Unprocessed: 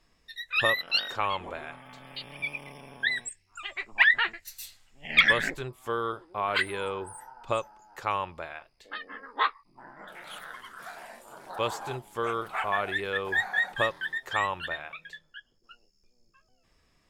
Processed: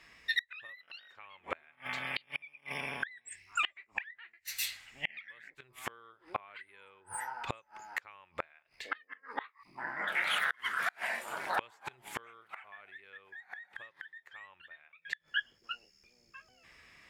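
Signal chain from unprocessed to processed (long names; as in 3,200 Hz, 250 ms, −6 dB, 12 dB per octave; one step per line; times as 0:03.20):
high-pass filter 50 Hz
parametric band 2,100 Hz +13.5 dB 1.2 octaves
downward compressor 8 to 1, threshold −17 dBFS, peak gain reduction 15.5 dB
low-shelf EQ 450 Hz −3.5 dB
gate with flip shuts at −23 dBFS, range −33 dB
level +4.5 dB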